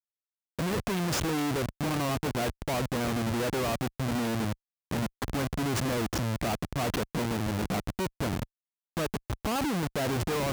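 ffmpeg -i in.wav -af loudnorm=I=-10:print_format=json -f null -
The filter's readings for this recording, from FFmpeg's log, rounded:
"input_i" : "-31.0",
"input_tp" : "-19.6",
"input_lra" : "2.1",
"input_thresh" : "-41.1",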